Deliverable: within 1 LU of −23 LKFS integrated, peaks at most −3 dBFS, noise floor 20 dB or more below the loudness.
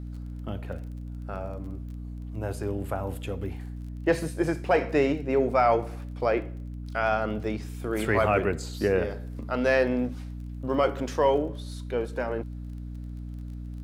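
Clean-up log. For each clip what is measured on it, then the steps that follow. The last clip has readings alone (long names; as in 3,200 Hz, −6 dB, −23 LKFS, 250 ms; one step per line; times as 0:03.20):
crackle rate 25 per second; mains hum 60 Hz; hum harmonics up to 300 Hz; level of the hum −34 dBFS; integrated loudness −28.0 LKFS; sample peak −11.5 dBFS; target loudness −23.0 LKFS
→ click removal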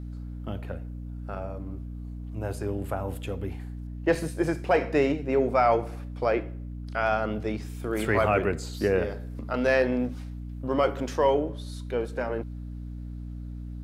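crackle rate 0 per second; mains hum 60 Hz; hum harmonics up to 300 Hz; level of the hum −34 dBFS
→ hum removal 60 Hz, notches 5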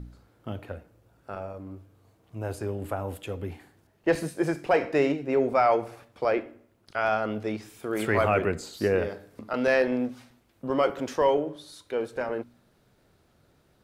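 mains hum none found; integrated loudness −27.5 LKFS; sample peak −11.0 dBFS; target loudness −23.0 LKFS
→ level +4.5 dB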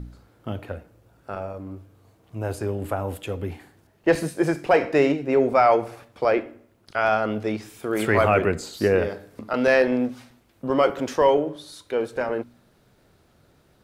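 integrated loudness −23.0 LKFS; sample peak −6.5 dBFS; background noise floor −60 dBFS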